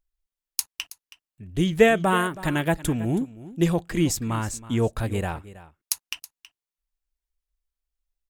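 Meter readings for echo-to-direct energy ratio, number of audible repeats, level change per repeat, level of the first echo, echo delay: -17.0 dB, 1, no regular repeats, -17.0 dB, 323 ms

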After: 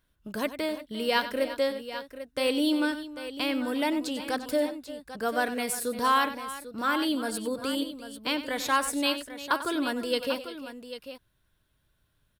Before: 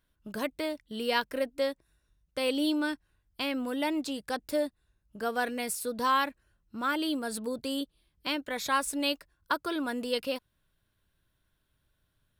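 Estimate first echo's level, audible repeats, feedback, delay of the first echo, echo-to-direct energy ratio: -13.0 dB, 3, no regular repeats, 94 ms, -8.5 dB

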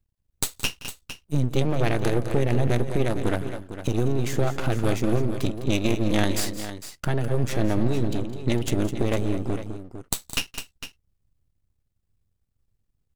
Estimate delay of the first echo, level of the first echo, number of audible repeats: 170 ms, -19.0 dB, 3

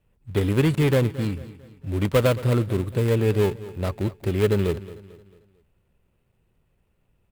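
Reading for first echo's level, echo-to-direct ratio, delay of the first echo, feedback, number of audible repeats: -17.0 dB, -16.0 dB, 223 ms, 43%, 3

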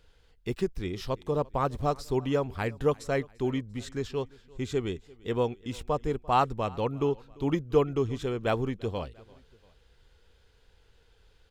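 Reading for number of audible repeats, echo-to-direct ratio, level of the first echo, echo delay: 2, -23.0 dB, -24.0 dB, 344 ms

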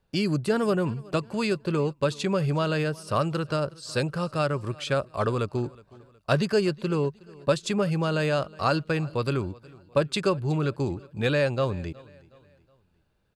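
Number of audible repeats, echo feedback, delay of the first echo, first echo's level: 2, 42%, 367 ms, -23.0 dB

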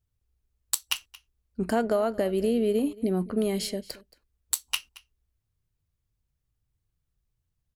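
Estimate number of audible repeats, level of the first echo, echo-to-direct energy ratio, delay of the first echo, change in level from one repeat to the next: 1, -21.0 dB, -21.0 dB, 225 ms, no regular repeats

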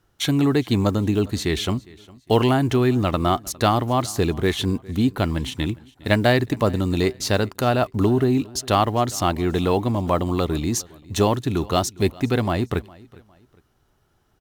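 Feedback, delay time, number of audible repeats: 34%, 407 ms, 2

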